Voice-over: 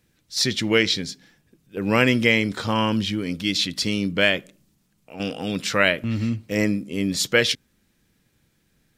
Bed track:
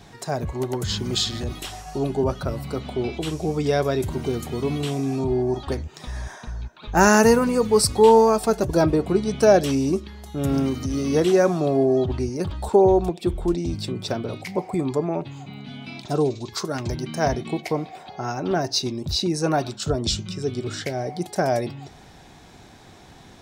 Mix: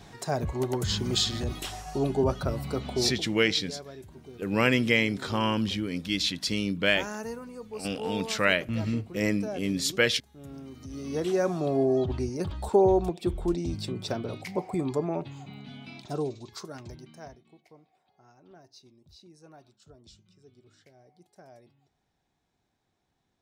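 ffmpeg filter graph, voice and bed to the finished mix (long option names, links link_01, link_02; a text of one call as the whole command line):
ffmpeg -i stem1.wav -i stem2.wav -filter_complex "[0:a]adelay=2650,volume=-5dB[link_01];[1:a]volume=14dB,afade=type=out:start_time=2.98:duration=0.31:silence=0.112202,afade=type=in:start_time=10.66:duration=1.19:silence=0.149624,afade=type=out:start_time=15.32:duration=2.08:silence=0.0530884[link_02];[link_01][link_02]amix=inputs=2:normalize=0" out.wav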